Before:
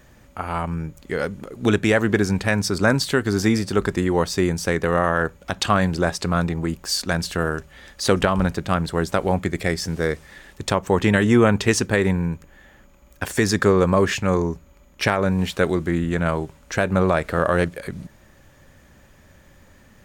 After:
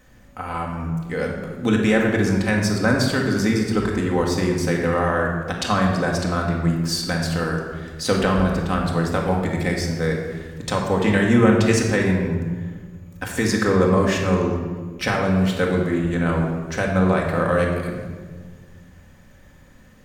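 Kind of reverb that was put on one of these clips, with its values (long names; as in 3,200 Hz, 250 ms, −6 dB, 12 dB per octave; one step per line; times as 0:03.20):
rectangular room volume 1,500 cubic metres, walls mixed, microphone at 2 metres
level −4 dB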